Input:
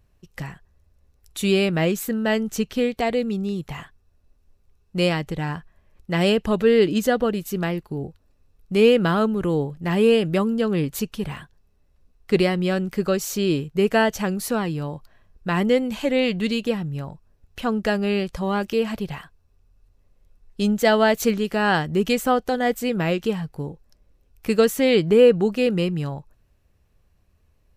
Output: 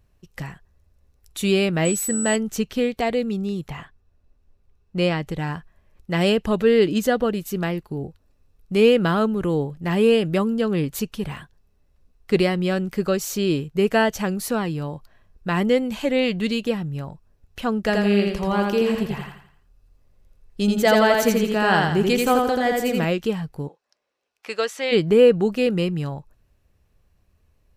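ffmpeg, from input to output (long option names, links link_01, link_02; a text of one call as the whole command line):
ffmpeg -i in.wav -filter_complex "[0:a]asettb=1/sr,asplit=3[link_01][link_02][link_03];[link_01]atrim=end=1.854[link_04];[link_02]atrim=start=1.85:end=2.36,asetpts=PTS-STARTPTS,afade=type=in:duration=0.004:curve=qsin,afade=type=out:start_time=0.506:duration=0.004:curve=qsin,aeval=exprs='val(0)+0.0562*sin(2*PI*7900*n/s)':channel_layout=same[link_05];[link_03]atrim=start=2.356[link_06];[link_04][link_05]acrossfade=duration=0.004:curve1=hsin:curve2=qsin[link_07];[link_07][link_06]acrossfade=duration=0.004:curve1=qsin:curve2=hsin,asettb=1/sr,asplit=3[link_08][link_09][link_10];[link_08]atrim=end=3.704[link_11];[link_09]atrim=start=3.7:end=5.22,asetpts=PTS-STARTPTS,afade=type=in:duration=0.004:curve=qsin,afade=type=out:start_time=1.516:duration=0.004:curve=qsin,highshelf=frequency=6000:gain=-11[link_12];[link_10]atrim=start=5.216[link_13];[link_11][link_12]acrossfade=duration=0.004:curve1=hsin:curve2=qsin[link_14];[link_14][link_13]acrossfade=duration=0.004:curve1=qsin:curve2=hsin,asettb=1/sr,asplit=3[link_15][link_16][link_17];[link_15]atrim=end=17.804[link_18];[link_16]atrim=start=17.8:end=23.05,asetpts=PTS-STARTPTS,afade=type=in:duration=0.004:curve=qsin,afade=type=out:start_time=5.246:duration=0.004:curve=qsin,aecho=1:1:84|168|252|336|420:0.708|0.283|0.113|0.0453|0.0181,atrim=end_sample=231525[link_19];[link_17]atrim=start=23.046[link_20];[link_18][link_19]acrossfade=duration=0.004:curve1=hsin:curve2=qsin[link_21];[link_21][link_20]acrossfade=duration=0.004:curve1=qsin:curve2=hsin,asplit=3[link_22][link_23][link_24];[link_22]afade=type=out:start_time=23.67:duration=0.02[link_25];[link_23]highpass=680,lowpass=6100,afade=type=in:start_time=23.67:duration=0.02,afade=type=out:start_time=24.91:duration=0.02[link_26];[link_24]afade=type=in:start_time=24.91:duration=0.02[link_27];[link_25][link_26][link_27]amix=inputs=3:normalize=0" out.wav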